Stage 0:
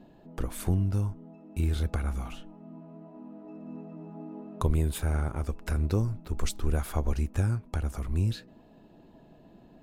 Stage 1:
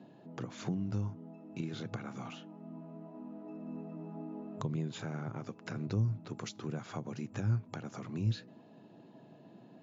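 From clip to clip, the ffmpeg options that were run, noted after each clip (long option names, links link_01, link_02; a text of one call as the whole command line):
ffmpeg -i in.wav -filter_complex "[0:a]afftfilt=real='re*between(b*sr/4096,100,7300)':imag='im*between(b*sr/4096,100,7300)':win_size=4096:overlap=0.75,acrossover=split=210[link_01][link_02];[link_02]acompressor=threshold=-40dB:ratio=4[link_03];[link_01][link_03]amix=inputs=2:normalize=0,volume=-1dB" out.wav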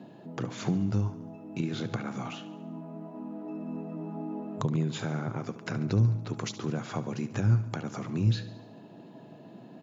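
ffmpeg -i in.wav -af "aecho=1:1:71|142|213|284|355|426:0.188|0.111|0.0656|0.0387|0.0228|0.0135,volume=7dB" out.wav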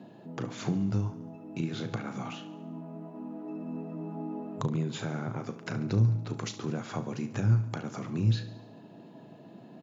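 ffmpeg -i in.wav -filter_complex "[0:a]asplit=2[link_01][link_02];[link_02]adelay=36,volume=-12dB[link_03];[link_01][link_03]amix=inputs=2:normalize=0,volume=-1.5dB" out.wav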